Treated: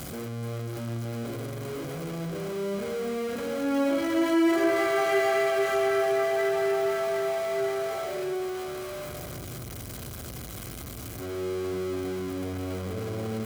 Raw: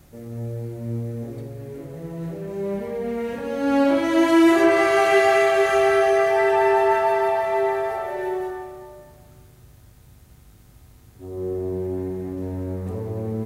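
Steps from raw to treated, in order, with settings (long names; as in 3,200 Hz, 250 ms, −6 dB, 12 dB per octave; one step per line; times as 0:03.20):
converter with a step at zero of −22 dBFS
notch comb filter 900 Hz
level −8.5 dB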